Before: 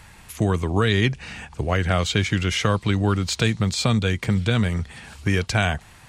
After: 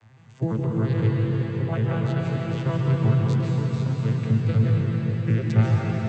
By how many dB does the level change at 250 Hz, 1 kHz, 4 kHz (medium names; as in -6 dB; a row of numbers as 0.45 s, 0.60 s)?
-1.5 dB, -7.5 dB, -17.0 dB